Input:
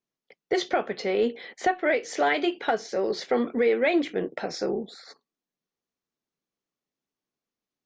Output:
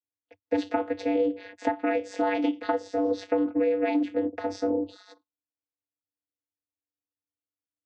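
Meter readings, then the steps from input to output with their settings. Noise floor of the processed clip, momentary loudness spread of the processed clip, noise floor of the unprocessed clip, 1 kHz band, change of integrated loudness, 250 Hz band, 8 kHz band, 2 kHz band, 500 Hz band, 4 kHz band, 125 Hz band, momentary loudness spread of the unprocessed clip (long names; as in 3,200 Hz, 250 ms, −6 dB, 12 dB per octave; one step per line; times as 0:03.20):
below −85 dBFS, 6 LU, below −85 dBFS, −3.0 dB, −1.5 dB, +2.5 dB, can't be measured, −8.0 dB, −2.0 dB, −9.5 dB, −6.0 dB, 7 LU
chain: noise reduction from a noise print of the clip's start 16 dB
channel vocoder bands 16, square 97.5 Hz
downward compressor, threshold −26 dBFS, peak gain reduction 8 dB
level +4.5 dB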